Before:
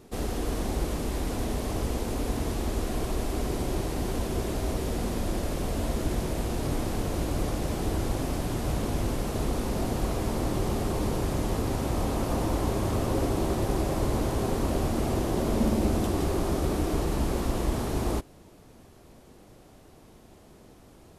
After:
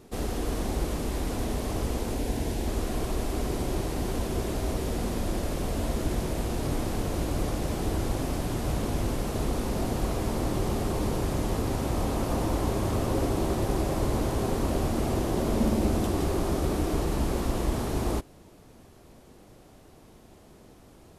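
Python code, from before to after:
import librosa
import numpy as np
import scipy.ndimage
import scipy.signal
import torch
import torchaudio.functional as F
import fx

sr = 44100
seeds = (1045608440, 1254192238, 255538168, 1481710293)

y = fx.peak_eq(x, sr, hz=1200.0, db=-14.5, octaves=0.21, at=(2.15, 2.68))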